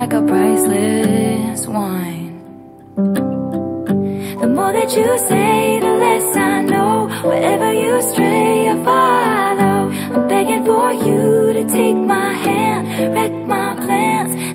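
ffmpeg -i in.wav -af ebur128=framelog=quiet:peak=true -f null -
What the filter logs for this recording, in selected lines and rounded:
Integrated loudness:
  I:         -15.0 LUFS
  Threshold: -25.2 LUFS
Loudness range:
  LRA:         4.8 LU
  Threshold: -35.1 LUFS
  LRA low:   -18.8 LUFS
  LRA high:  -13.9 LUFS
True peak:
  Peak:       -1.6 dBFS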